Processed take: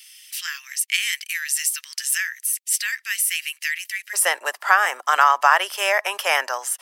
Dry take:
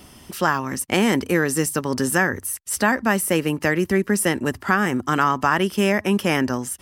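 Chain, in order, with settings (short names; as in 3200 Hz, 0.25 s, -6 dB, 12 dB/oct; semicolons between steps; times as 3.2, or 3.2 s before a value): steep high-pass 2000 Hz 36 dB/oct, from 4.13 s 600 Hz; gain +4.5 dB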